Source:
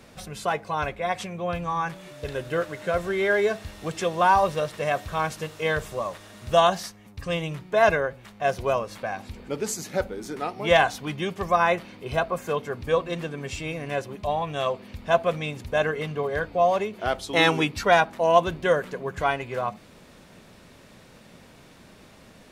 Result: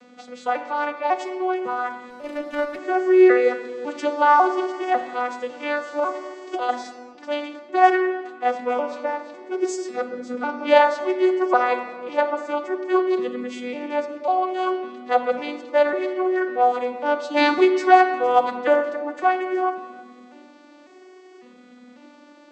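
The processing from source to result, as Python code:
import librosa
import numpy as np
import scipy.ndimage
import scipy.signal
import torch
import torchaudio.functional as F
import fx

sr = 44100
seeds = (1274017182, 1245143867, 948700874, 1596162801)

y = fx.vocoder_arp(x, sr, chord='minor triad', root=59, every_ms=549)
y = fx.over_compress(y, sr, threshold_db=-26.0, ratio=-1.0, at=(5.86, 6.68), fade=0.02)
y = fx.low_shelf(y, sr, hz=310.0, db=-8.5)
y = fx.room_shoebox(y, sr, seeds[0], volume_m3=1800.0, walls='mixed', distance_m=0.94)
y = fx.running_max(y, sr, window=5, at=(2.1, 2.79))
y = y * librosa.db_to_amplitude(4.5)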